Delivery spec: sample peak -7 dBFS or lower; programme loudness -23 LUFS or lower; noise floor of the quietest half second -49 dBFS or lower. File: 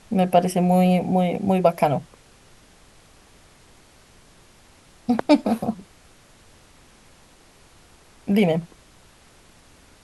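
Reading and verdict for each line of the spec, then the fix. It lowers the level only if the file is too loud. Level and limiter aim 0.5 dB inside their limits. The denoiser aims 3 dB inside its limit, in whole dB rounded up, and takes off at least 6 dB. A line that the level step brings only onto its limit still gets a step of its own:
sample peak -4.5 dBFS: fail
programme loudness -21.0 LUFS: fail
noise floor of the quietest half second -52 dBFS: OK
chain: gain -2.5 dB; limiter -7.5 dBFS

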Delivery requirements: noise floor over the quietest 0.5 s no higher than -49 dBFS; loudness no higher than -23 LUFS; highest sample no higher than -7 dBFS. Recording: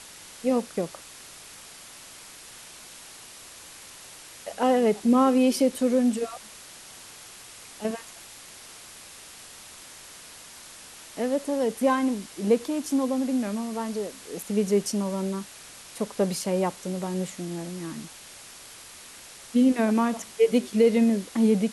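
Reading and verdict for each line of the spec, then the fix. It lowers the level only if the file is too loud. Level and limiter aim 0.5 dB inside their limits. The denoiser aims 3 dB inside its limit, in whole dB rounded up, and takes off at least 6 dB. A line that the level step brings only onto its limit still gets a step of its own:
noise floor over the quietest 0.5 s -46 dBFS: fail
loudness -25.5 LUFS: OK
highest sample -9.5 dBFS: OK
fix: denoiser 6 dB, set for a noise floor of -46 dBFS

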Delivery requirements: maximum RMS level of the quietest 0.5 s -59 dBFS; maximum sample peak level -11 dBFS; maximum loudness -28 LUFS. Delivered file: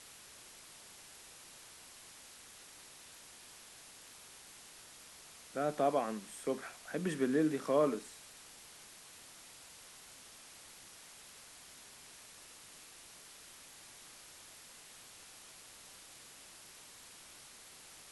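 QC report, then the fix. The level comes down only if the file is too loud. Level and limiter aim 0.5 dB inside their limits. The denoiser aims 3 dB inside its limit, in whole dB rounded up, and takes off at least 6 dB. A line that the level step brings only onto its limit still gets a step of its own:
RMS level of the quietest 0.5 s -56 dBFS: fail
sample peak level -19.5 dBFS: OK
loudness -38.5 LUFS: OK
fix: denoiser 6 dB, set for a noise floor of -56 dBFS

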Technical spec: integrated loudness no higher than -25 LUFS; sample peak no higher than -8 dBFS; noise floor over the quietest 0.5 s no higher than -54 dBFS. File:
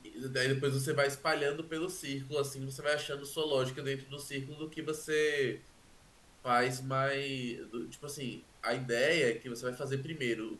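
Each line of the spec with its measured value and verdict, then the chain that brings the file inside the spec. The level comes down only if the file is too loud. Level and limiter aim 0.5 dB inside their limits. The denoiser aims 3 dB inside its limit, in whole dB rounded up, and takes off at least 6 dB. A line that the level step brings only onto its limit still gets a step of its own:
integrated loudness -34.0 LUFS: OK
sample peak -17.5 dBFS: OK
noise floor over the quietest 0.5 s -60 dBFS: OK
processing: none

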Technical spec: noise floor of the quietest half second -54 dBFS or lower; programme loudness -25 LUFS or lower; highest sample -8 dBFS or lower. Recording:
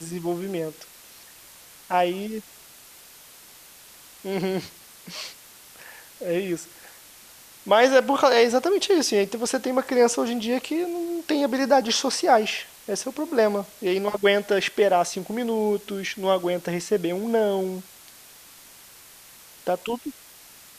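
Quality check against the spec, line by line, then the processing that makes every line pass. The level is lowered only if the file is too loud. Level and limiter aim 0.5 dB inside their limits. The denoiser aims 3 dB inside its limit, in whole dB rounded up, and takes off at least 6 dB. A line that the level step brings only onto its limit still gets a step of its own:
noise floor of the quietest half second -48 dBFS: fail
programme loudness -23.5 LUFS: fail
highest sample -6.0 dBFS: fail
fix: denoiser 7 dB, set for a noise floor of -48 dBFS; gain -2 dB; limiter -8.5 dBFS

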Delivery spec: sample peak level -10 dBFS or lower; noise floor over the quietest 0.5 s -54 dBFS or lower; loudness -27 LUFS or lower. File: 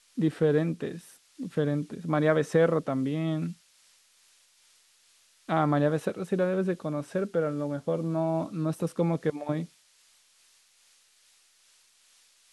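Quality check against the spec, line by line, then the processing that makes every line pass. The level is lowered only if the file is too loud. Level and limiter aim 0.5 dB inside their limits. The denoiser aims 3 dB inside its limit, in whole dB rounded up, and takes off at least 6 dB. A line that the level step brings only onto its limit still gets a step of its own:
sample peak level -11.0 dBFS: OK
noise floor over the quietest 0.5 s -63 dBFS: OK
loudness -28.5 LUFS: OK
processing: none

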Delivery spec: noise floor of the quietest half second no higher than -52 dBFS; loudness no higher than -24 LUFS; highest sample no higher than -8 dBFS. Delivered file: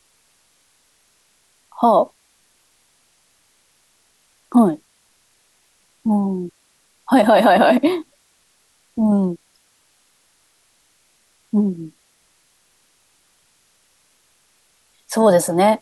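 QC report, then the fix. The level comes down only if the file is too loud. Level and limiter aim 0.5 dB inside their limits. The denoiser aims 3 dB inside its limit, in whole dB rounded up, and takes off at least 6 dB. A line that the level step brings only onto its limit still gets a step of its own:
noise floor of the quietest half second -60 dBFS: OK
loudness -17.0 LUFS: fail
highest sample -4.5 dBFS: fail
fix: gain -7.5 dB

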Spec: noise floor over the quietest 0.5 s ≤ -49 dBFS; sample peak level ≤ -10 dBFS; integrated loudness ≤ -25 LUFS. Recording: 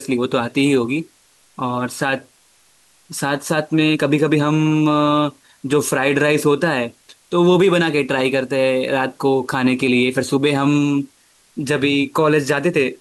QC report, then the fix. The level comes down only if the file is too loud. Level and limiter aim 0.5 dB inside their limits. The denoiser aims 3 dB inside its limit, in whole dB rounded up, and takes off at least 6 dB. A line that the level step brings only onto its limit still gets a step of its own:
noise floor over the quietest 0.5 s -55 dBFS: OK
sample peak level -5.5 dBFS: fail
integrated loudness -17.5 LUFS: fail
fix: gain -8 dB

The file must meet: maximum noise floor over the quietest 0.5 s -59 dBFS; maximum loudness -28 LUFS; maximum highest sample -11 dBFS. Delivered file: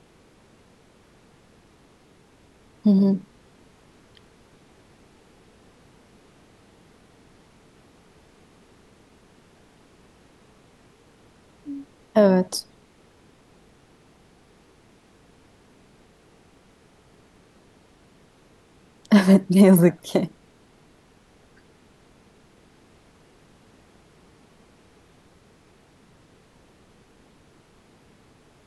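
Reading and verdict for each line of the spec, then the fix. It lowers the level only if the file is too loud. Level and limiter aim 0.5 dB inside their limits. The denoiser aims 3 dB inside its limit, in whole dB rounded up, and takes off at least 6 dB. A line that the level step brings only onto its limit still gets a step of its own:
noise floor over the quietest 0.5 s -56 dBFS: fail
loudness -19.0 LUFS: fail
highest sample -4.5 dBFS: fail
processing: gain -9.5 dB

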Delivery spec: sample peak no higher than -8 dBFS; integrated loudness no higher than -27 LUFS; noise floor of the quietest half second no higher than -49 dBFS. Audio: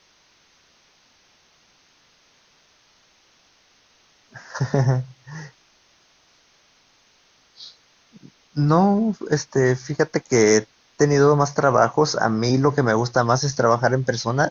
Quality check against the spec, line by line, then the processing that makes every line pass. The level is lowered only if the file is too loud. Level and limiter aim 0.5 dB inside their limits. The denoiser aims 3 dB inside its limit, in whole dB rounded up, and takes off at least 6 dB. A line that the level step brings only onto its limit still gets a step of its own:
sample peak -4.5 dBFS: fail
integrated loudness -19.5 LUFS: fail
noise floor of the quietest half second -59 dBFS: OK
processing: gain -8 dB

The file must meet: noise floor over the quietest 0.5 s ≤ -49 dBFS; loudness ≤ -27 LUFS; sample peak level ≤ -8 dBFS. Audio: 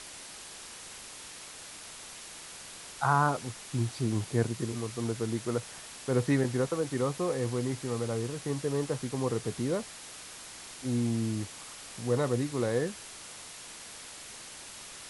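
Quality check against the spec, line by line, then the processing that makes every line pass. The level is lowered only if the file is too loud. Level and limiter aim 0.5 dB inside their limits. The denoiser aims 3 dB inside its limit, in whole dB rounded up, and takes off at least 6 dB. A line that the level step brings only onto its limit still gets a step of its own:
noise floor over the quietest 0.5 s -46 dBFS: fail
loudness -33.0 LUFS: OK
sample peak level -13.0 dBFS: OK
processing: denoiser 6 dB, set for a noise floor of -46 dBFS

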